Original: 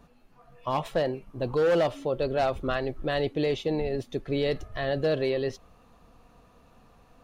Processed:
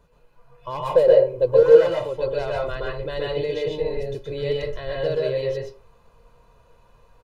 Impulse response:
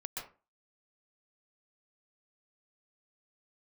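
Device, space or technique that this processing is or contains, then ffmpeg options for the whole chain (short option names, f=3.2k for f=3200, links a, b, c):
microphone above a desk: -filter_complex "[0:a]asettb=1/sr,asplit=3[a][b][c];[a]atrim=end=0.914[d];[b]atrim=start=0.91:end=1.63,asetpts=PTS-STARTPTS,afade=t=in:d=0.004:c=qsin,afade=t=out:st=0.716:d=0.004:c=qsin,equalizer=f=510:t=o:w=0.59:g=14[e];[c]atrim=start=1.626[f];[d][e]acrossfade=d=0.004:c1=hsin:c2=qsin[g];[g][f]acrossfade=d=0.004:c1=qsin:c2=hsin,aecho=1:1:2:0.69[h];[1:a]atrim=start_sample=2205[i];[h][i]afir=irnorm=-1:irlink=0"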